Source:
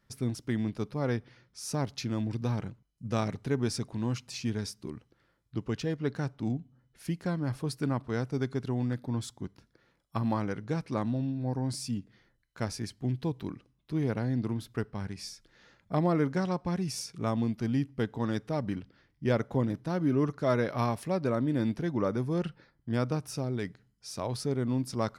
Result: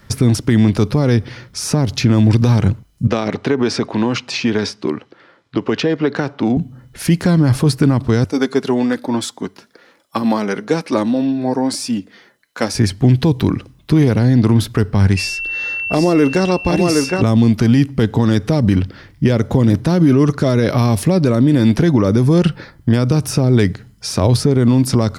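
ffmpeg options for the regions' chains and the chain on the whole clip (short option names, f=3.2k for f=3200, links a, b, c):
-filter_complex "[0:a]asettb=1/sr,asplit=3[a][b][c];[a]atrim=end=3.074[d];[b]atrim=start=3.07:end=6.57,asetpts=PTS-STARTPTS,afade=t=in:d=0.004:c=qsin,afade=t=out:st=3.496:d=0.004:c=qsin,highpass=300,lowpass=4k,acompressor=threshold=-35dB:ratio=4:attack=3.2:release=140:knee=1:detection=peak[e];[c]atrim=start=6.566[f];[d][e]acrossfade=d=0.004:c1=hsin:c2=qsin[g];[g][f]acrossfade=d=0.004:c1=qsin:c2=hsin,asettb=1/sr,asplit=3[h][i][j];[h]atrim=end=8.244[k];[i]atrim=start=8.24:end=12.75,asetpts=PTS-STARTPTS,afade=t=in:d=0.004:c=qsin,afade=t=out:st=4.506:d=0.004:c=qsin,highpass=320,flanger=delay=3.2:depth=1.8:regen=-40:speed=1.1:shape=triangular[l];[j]atrim=start=12.746[m];[k][l]acrossfade=d=0.004:c1=hsin:c2=qsin[n];[n][m]acrossfade=d=0.004:c1=qsin:c2=hsin,asettb=1/sr,asplit=3[o][p][q];[o]atrim=end=15.174[r];[p]atrim=start=15.17:end=17.22,asetpts=PTS-STARTPTS,afade=t=in:d=0.004:c=qsin,afade=t=out:st=2.046:d=0.004:c=qsin,equalizer=f=150:t=o:w=1.2:g=-13.5,aeval=exprs='val(0)+0.00631*sin(2*PI*2700*n/s)':c=same,aecho=1:1:762:0.422,atrim=end_sample=90405[s];[q]atrim=start=17.216[t];[r][s]acrossfade=d=0.004:c1=hsin:c2=qsin[u];[u][t]acrossfade=d=0.004:c1=qsin:c2=hsin,equalizer=f=93:t=o:w=0.35:g=6.5,acrossover=split=460|2900[v][w][x];[v]acompressor=threshold=-31dB:ratio=4[y];[w]acompressor=threshold=-45dB:ratio=4[z];[x]acompressor=threshold=-49dB:ratio=4[aa];[y][z][aa]amix=inputs=3:normalize=0,alimiter=level_in=27.5dB:limit=-1dB:release=50:level=0:latency=1,volume=-3dB"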